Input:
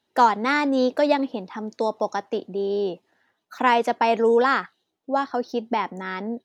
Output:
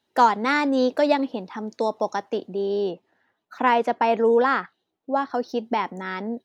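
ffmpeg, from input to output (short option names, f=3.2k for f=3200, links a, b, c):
-filter_complex "[0:a]asettb=1/sr,asplit=3[a][b][c];[a]atrim=end=2.914[d];[b]atrim=start=2.91:end=5.3,asetpts=PTS-STARTPTS,afade=t=in:d=0.004:c=qsin,afade=t=out:st=2.386:d=0.004:c=qsin,highshelf=f=4.5k:g=-12[e];[c]atrim=start=5.296[f];[d][e]acrossfade=d=0.004:c1=hsin:c2=qsin[g];[g][f]acrossfade=d=0.004:c1=qsin:c2=hsin"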